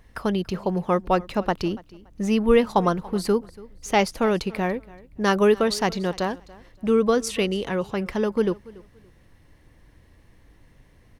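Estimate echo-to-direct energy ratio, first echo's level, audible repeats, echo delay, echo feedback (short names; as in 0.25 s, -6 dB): -21.5 dB, -21.5 dB, 2, 0.285 s, 24%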